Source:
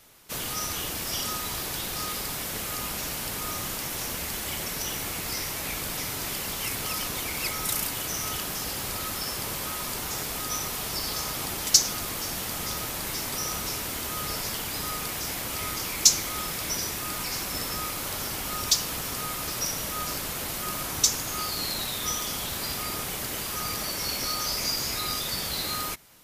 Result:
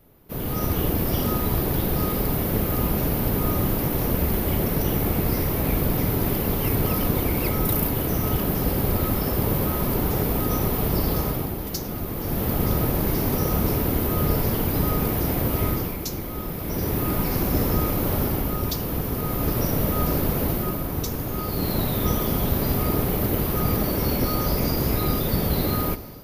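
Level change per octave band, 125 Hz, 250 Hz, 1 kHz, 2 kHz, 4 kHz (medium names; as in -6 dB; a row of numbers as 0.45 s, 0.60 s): +17.0 dB, +15.5 dB, +4.5 dB, -1.0 dB, -7.0 dB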